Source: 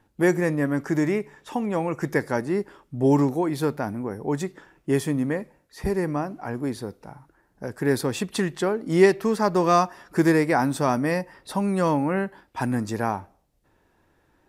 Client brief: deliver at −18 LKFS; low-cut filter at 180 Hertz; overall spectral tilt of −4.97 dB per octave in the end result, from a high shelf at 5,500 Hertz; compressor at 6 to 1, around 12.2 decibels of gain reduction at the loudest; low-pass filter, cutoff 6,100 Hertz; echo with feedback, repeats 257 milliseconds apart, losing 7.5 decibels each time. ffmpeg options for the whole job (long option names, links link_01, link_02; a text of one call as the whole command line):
ffmpeg -i in.wav -af "highpass=180,lowpass=6100,highshelf=frequency=5500:gain=7.5,acompressor=threshold=-24dB:ratio=6,aecho=1:1:257|514|771|1028|1285:0.422|0.177|0.0744|0.0312|0.0131,volume=11.5dB" out.wav